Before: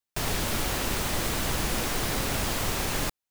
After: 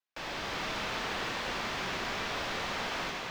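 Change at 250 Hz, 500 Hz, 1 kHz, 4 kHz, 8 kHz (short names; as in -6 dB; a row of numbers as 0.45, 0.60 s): -9.0, -5.5, -2.5, -4.0, -15.0 dB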